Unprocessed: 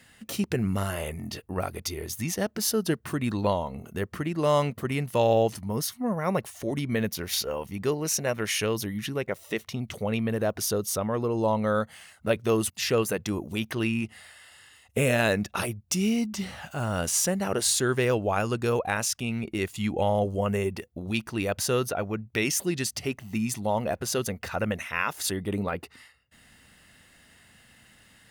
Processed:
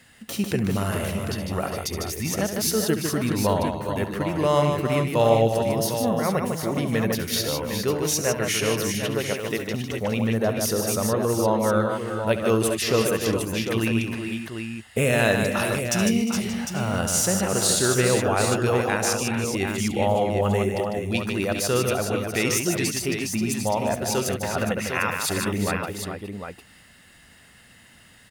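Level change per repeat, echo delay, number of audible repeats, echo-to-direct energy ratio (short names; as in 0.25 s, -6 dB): no steady repeat, 70 ms, 5, -1.5 dB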